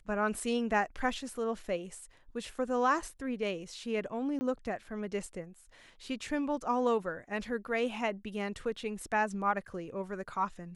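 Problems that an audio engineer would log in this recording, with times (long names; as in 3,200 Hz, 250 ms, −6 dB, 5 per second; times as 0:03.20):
0:04.39–0:04.41: drop-out 20 ms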